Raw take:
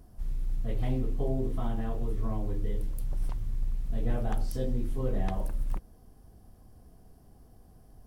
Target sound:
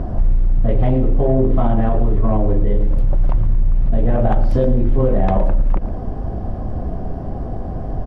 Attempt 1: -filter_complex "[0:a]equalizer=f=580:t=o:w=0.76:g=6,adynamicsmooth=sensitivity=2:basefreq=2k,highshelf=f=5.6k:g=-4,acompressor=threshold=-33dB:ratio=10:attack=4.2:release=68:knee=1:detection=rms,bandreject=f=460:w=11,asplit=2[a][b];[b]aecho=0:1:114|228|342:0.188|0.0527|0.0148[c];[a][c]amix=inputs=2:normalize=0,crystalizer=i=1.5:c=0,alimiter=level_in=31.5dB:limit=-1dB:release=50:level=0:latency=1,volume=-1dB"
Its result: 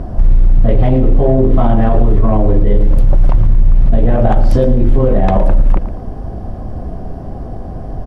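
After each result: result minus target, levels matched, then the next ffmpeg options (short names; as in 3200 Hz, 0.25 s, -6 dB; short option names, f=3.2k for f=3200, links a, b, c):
compressor: peak gain reduction -6.5 dB; 8000 Hz band +6.0 dB
-filter_complex "[0:a]equalizer=f=580:t=o:w=0.76:g=6,adynamicsmooth=sensitivity=2:basefreq=2k,highshelf=f=5.6k:g=-4,acompressor=threshold=-40.5dB:ratio=10:attack=4.2:release=68:knee=1:detection=rms,bandreject=f=460:w=11,asplit=2[a][b];[b]aecho=0:1:114|228|342:0.188|0.0527|0.0148[c];[a][c]amix=inputs=2:normalize=0,crystalizer=i=1.5:c=0,alimiter=level_in=31.5dB:limit=-1dB:release=50:level=0:latency=1,volume=-1dB"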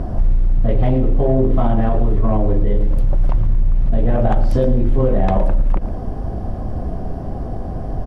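8000 Hz band +6.5 dB
-filter_complex "[0:a]equalizer=f=580:t=o:w=0.76:g=6,adynamicsmooth=sensitivity=2:basefreq=2k,highshelf=f=5.6k:g=-14.5,acompressor=threshold=-40.5dB:ratio=10:attack=4.2:release=68:knee=1:detection=rms,bandreject=f=460:w=11,asplit=2[a][b];[b]aecho=0:1:114|228|342:0.188|0.0527|0.0148[c];[a][c]amix=inputs=2:normalize=0,crystalizer=i=1.5:c=0,alimiter=level_in=31.5dB:limit=-1dB:release=50:level=0:latency=1,volume=-1dB"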